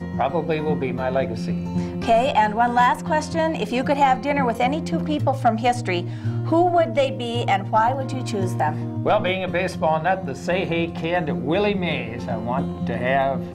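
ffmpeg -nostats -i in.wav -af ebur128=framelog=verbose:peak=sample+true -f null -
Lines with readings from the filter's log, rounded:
Integrated loudness:
  I:         -21.8 LUFS
  Threshold: -31.8 LUFS
Loudness range:
  LRA:         2.8 LU
  Threshold: -41.5 LUFS
  LRA low:   -23.0 LUFS
  LRA high:  -20.2 LUFS
Sample peak:
  Peak:       -7.9 dBFS
True peak:
  Peak:       -7.8 dBFS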